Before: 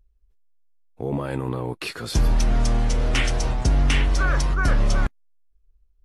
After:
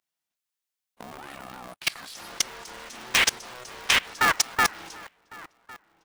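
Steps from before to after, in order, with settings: high-pass 460 Hz 24 dB/octave; tilt shelf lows -7 dB, about 670 Hz; echo from a far wall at 190 m, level -19 dB; level held to a coarse grid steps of 23 dB; polarity switched at an audio rate 250 Hz; trim +4 dB

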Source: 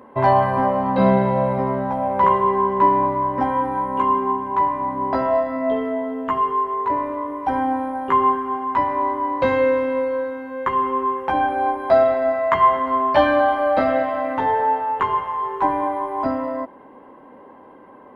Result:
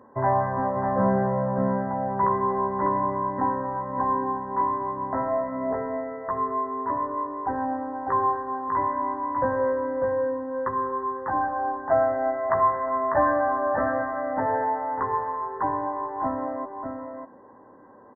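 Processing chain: brick-wall FIR low-pass 2 kHz; peaking EQ 110 Hz +9.5 dB 0.22 oct; on a send: delay 598 ms -4.5 dB; on the sum: trim -7 dB

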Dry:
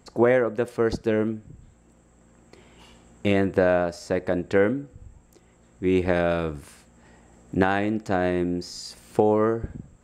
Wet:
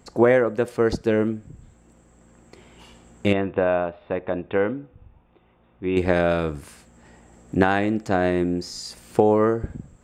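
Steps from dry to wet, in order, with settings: 3.33–5.97 s: rippled Chebyshev low-pass 3.7 kHz, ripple 6 dB; trim +2.5 dB

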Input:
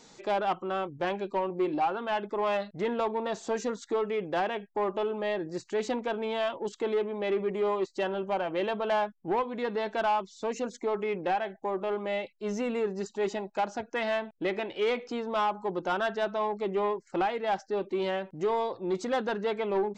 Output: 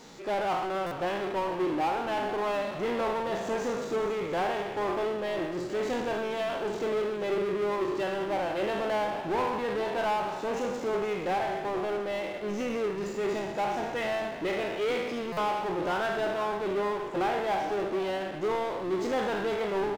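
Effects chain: spectral sustain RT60 1.09 s; power-law waveshaper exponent 0.5; treble shelf 4.9 kHz -9.5 dB; frequency-shifting echo 476 ms, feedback 49%, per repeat -41 Hz, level -12.5 dB; buffer glitch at 0.86/15.32 s, samples 256, times 8; upward expansion 1.5:1, over -34 dBFS; trim -5.5 dB

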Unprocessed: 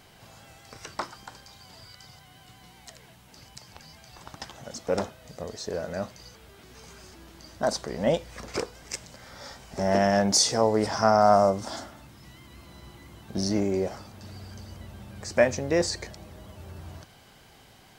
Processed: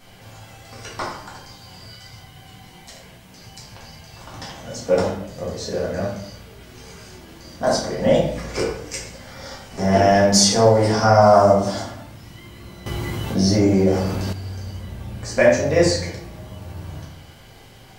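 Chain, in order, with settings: reverberation RT60 0.65 s, pre-delay 4 ms, DRR -6 dB; 12.86–14.33 s: level flattener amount 50%

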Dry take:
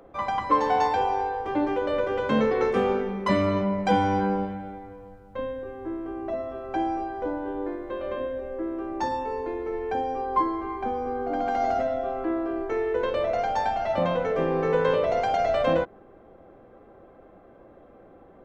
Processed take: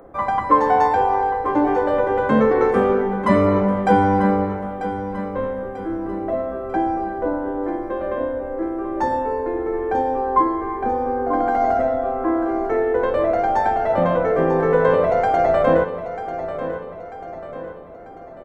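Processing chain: high-order bell 4 kHz -10.5 dB; on a send: feedback delay 942 ms, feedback 47%, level -11 dB; on the sum: trim +6.5 dB

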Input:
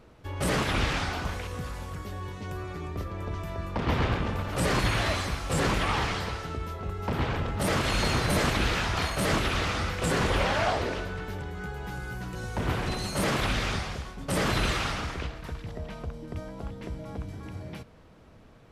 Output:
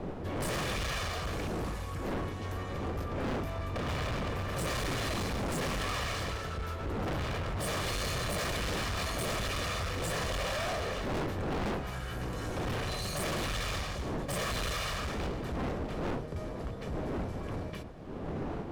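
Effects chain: comb filter that takes the minimum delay 1.7 ms; wind noise 420 Hz -31 dBFS; hard clipper -31.5 dBFS, distortion -4 dB

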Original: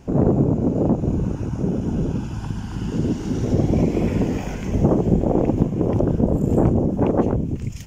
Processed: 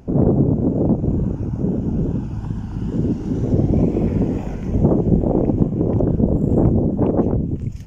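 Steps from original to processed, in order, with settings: tilt shelf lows +6.5 dB, about 1.1 kHz; wow and flutter 52 cents; trim -4 dB

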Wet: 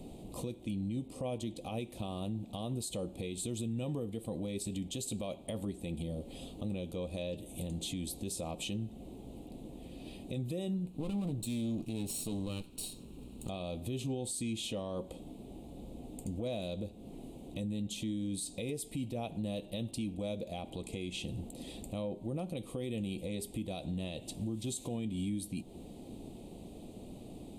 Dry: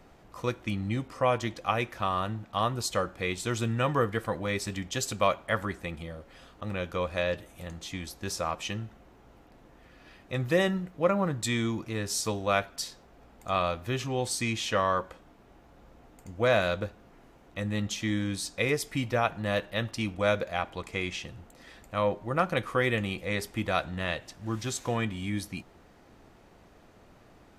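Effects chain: 10.85–13.49 s: comb filter that takes the minimum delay 0.73 ms; FFT filter 100 Hz 0 dB, 240 Hz +7 dB, 790 Hz -5 dB, 1.6 kHz -30 dB, 2.5 kHz -6 dB, 3.8 kHz +1 dB, 5.6 kHz -10 dB, 8.8 kHz +8 dB, 14 kHz -1 dB; compression 4:1, threshold -40 dBFS, peak gain reduction 18 dB; peak limiter -35.5 dBFS, peak gain reduction 9 dB; trim +6.5 dB

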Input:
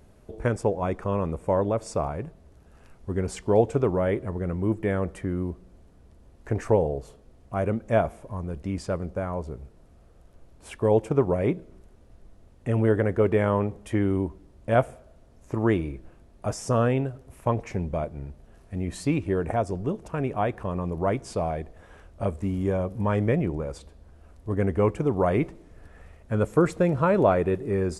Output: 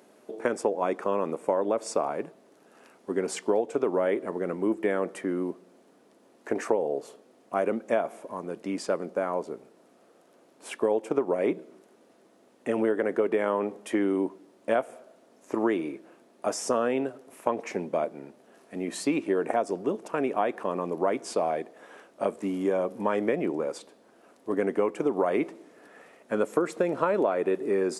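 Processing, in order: high-pass 250 Hz 24 dB/octave; compression 12:1, threshold -24 dBFS, peak gain reduction 11.5 dB; trim +3.5 dB

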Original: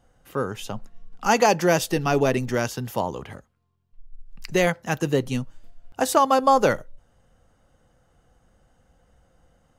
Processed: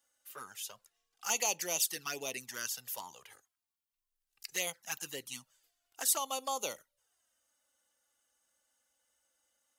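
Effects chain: touch-sensitive flanger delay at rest 3.5 ms, full sweep at -15.5 dBFS; differentiator; trim +2.5 dB

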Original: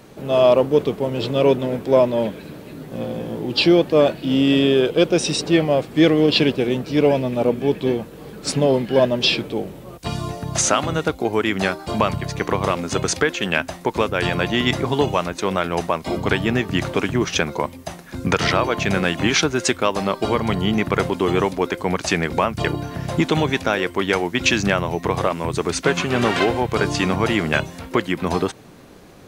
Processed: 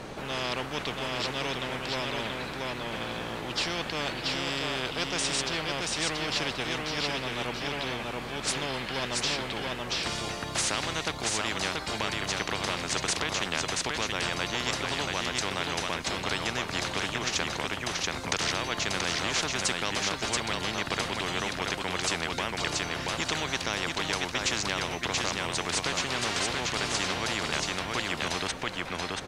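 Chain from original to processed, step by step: distance through air 61 m; delay 681 ms -6 dB; spectrum-flattening compressor 4:1; trim -7 dB

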